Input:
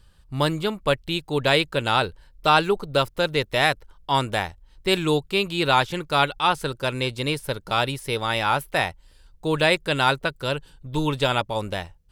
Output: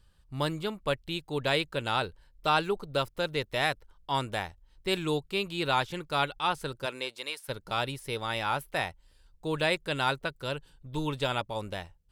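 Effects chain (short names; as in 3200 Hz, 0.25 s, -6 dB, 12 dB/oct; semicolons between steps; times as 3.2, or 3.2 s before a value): 6.85–7.48 HPF 260 Hz -> 1100 Hz 12 dB/oct; gain -8 dB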